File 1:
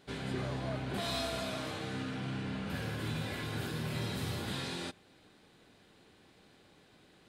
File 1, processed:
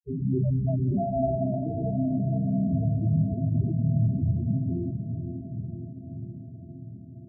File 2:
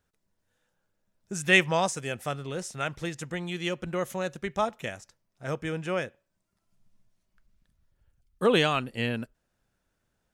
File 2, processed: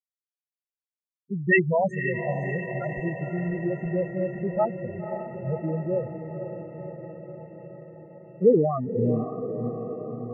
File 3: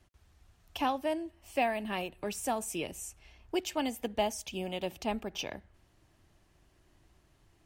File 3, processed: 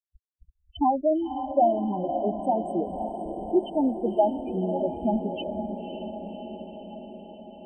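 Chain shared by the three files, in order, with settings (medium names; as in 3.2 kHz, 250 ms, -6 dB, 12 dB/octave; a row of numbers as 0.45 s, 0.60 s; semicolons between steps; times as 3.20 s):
local Wiener filter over 41 samples; low-pass 3.1 kHz 6 dB/octave; bit crusher 9-bit; loudest bins only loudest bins 4; echo that smears into a reverb 543 ms, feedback 68%, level -8 dB; normalise loudness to -27 LUFS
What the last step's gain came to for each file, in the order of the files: +16.0 dB, +7.0 dB, +11.5 dB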